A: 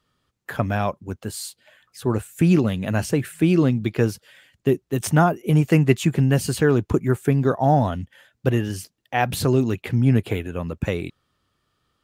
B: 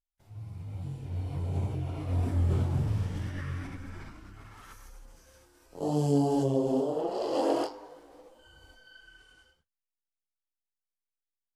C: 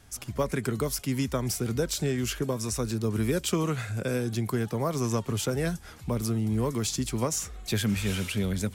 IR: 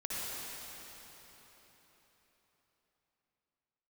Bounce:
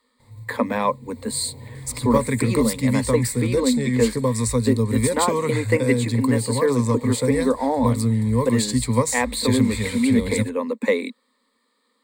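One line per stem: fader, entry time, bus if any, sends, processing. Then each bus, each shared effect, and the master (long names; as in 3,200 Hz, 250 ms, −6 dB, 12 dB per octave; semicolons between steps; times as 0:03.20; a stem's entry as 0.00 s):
−2.0 dB, 0.00 s, no send, Butterworth high-pass 200 Hz 72 dB per octave
0.0 dB, 0.00 s, no send, brickwall limiter −25.5 dBFS, peak gain reduction 11.5 dB; noise that follows the level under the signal 25 dB; automatic ducking −10 dB, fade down 0.20 s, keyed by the first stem
+2.5 dB, 1.75 s, no send, no processing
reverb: not used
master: EQ curve with evenly spaced ripples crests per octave 0.98, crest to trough 16 dB; speech leveller within 4 dB 0.5 s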